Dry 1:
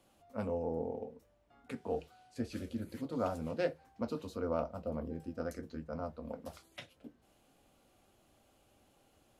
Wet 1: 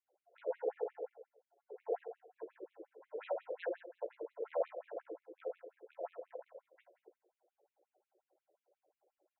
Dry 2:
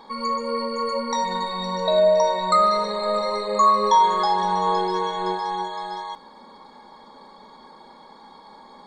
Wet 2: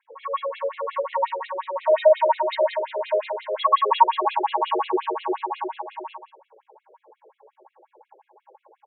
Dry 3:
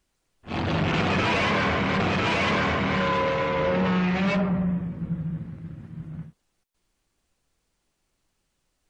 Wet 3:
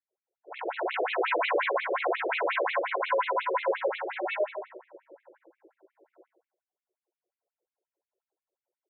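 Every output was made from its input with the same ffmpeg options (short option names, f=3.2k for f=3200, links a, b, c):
-filter_complex "[0:a]adynamicsmooth=sensitivity=1.5:basefreq=550,asuperstop=centerf=1200:order=20:qfactor=7.1,asplit=2[a][b];[b]adelay=16,volume=-4dB[c];[a][c]amix=inputs=2:normalize=0,asplit=2[d][e];[e]aecho=0:1:84|168|252|336|420:0.501|0.221|0.097|0.0427|0.0188[f];[d][f]amix=inputs=2:normalize=0,afftfilt=real='re*between(b*sr/1024,450*pow(3000/450,0.5+0.5*sin(2*PI*5.6*pts/sr))/1.41,450*pow(3000/450,0.5+0.5*sin(2*PI*5.6*pts/sr))*1.41)':imag='im*between(b*sr/1024,450*pow(3000/450,0.5+0.5*sin(2*PI*5.6*pts/sr))/1.41,450*pow(3000/450,0.5+0.5*sin(2*PI*5.6*pts/sr))*1.41)':win_size=1024:overlap=0.75,volume=2.5dB"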